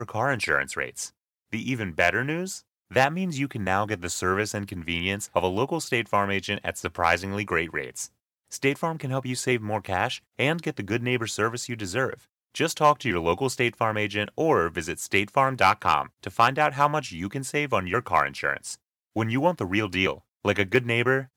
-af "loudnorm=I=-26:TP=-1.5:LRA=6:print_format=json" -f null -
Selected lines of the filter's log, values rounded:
"input_i" : "-25.6",
"input_tp" : "-6.4",
"input_lra" : "3.5",
"input_thresh" : "-35.8",